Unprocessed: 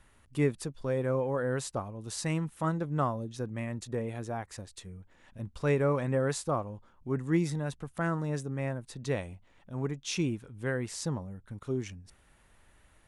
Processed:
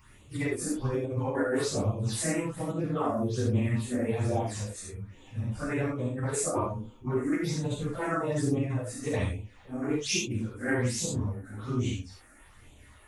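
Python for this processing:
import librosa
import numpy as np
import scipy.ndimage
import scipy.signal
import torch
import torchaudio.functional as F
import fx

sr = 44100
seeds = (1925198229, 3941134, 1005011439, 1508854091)

y = fx.phase_scramble(x, sr, seeds[0], window_ms=100)
y = fx.low_shelf(y, sr, hz=140.0, db=-4.0)
y = fx.phaser_stages(y, sr, stages=8, low_hz=120.0, high_hz=1700.0, hz=1.2, feedback_pct=30)
y = fx.dynamic_eq(y, sr, hz=1500.0, q=0.81, threshold_db=-49.0, ratio=4.0, max_db=-4)
y = fx.over_compress(y, sr, threshold_db=-36.0, ratio=-0.5)
y = fx.rev_gated(y, sr, seeds[1], gate_ms=110, shape='flat', drr_db=-3.0)
y = fx.doppler_dist(y, sr, depth_ms=0.14)
y = y * librosa.db_to_amplitude(4.0)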